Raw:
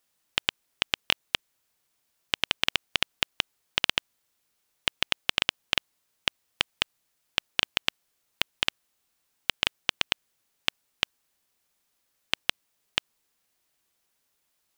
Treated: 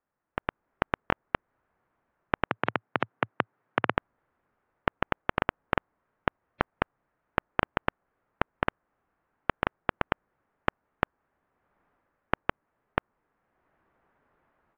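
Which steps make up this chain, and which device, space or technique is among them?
2.46–3.96 s: Chebyshev band-pass 110–4500 Hz, order 4; dynamic bell 3.1 kHz, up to -4 dB, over -42 dBFS, Q 0.73; action camera in a waterproof case (low-pass 1.6 kHz 24 dB/octave; level rider gain up to 16 dB; trim -1 dB; AAC 64 kbps 48 kHz)

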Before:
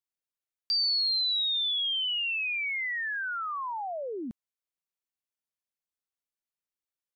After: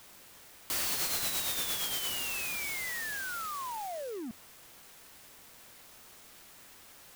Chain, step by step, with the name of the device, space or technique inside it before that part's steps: 0.91–2.11 s: comb 7 ms, depth 30%; early CD player with a faulty converter (jump at every zero crossing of -36.5 dBFS; sampling jitter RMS 0.062 ms); trim -6.5 dB

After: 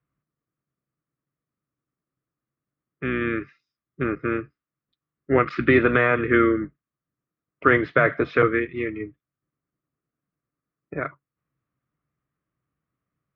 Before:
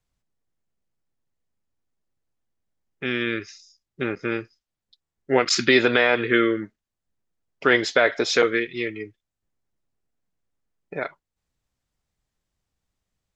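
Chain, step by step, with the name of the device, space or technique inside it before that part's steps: sub-octave bass pedal (octave divider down 2 oct, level -4 dB; cabinet simulation 86–2300 Hz, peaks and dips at 87 Hz -4 dB, 140 Hz +10 dB, 300 Hz +7 dB, 840 Hz -9 dB, 1.2 kHz +10 dB); trim -1 dB

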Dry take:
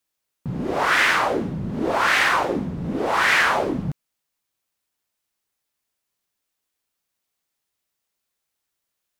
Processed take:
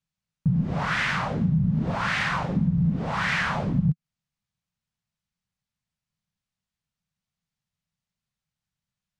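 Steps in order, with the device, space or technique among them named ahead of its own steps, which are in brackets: jukebox (low-pass 6.6 kHz 12 dB/octave; resonant low shelf 240 Hz +12.5 dB, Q 3; compression 5:1, threshold -12 dBFS, peak gain reduction 9 dB); trim -7 dB

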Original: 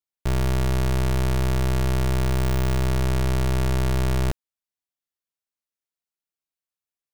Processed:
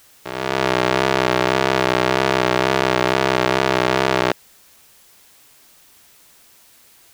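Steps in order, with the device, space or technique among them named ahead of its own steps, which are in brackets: dictaphone (band-pass 390–4200 Hz; level rider gain up to 17 dB; wow and flutter; white noise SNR 30 dB)

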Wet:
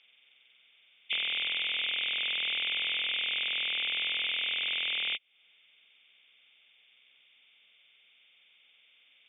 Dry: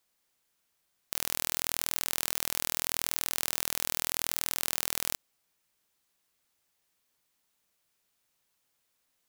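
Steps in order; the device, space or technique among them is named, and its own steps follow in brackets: hearing aid with frequency lowering (knee-point frequency compression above 2 kHz 4:1; compression 3:1, threshold -41 dBFS, peak gain reduction 13.5 dB; cabinet simulation 280–5200 Hz, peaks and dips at 330 Hz -9 dB, 680 Hz -3 dB, 990 Hz -9 dB, 2.2 kHz +7 dB, 3.4 kHz -5 dB, 5.1 kHz +7 dB); trim +8.5 dB

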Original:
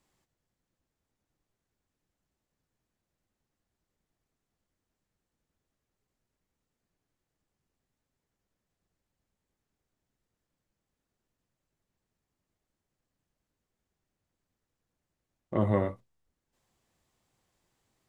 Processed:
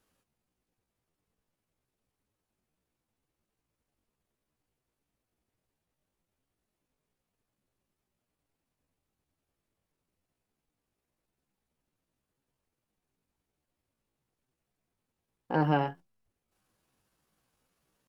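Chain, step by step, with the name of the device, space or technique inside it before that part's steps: chipmunk voice (pitch shift +6.5 st)

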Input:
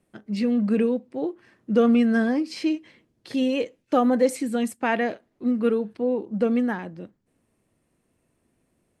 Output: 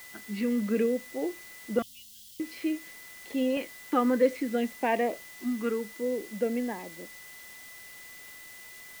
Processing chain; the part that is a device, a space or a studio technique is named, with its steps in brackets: shortwave radio (band-pass 290–2700 Hz; tremolo 0.23 Hz, depth 37%; LFO notch saw up 0.56 Hz 440–2000 Hz; whistle 2 kHz -48 dBFS; white noise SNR 19 dB); 1.82–2.40 s: Chebyshev band-stop 130–3000 Hz, order 5

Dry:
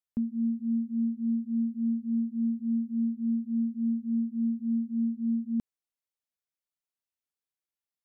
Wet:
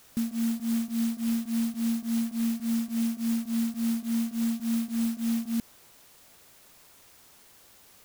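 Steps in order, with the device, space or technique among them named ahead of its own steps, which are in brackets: early CD player with a faulty converter (jump at every zero crossing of -44.5 dBFS; sampling jitter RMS 0.13 ms)

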